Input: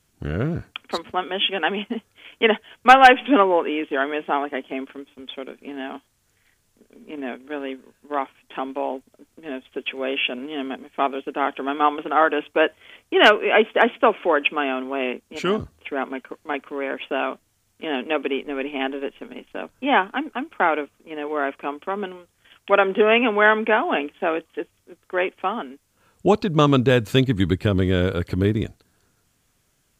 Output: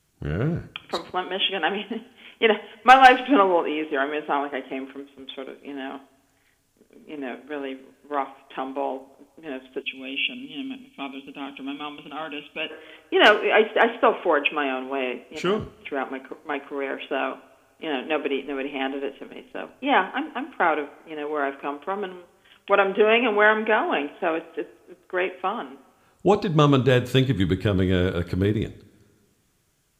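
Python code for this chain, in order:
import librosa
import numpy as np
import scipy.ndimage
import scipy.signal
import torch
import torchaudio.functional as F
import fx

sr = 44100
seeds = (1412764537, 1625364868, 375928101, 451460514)

y = fx.rev_double_slope(x, sr, seeds[0], early_s=0.42, late_s=1.9, knee_db=-18, drr_db=11.0)
y = fx.spec_box(y, sr, start_s=9.82, length_s=2.89, low_hz=280.0, high_hz=2200.0, gain_db=-15)
y = y * 10.0 ** (-2.0 / 20.0)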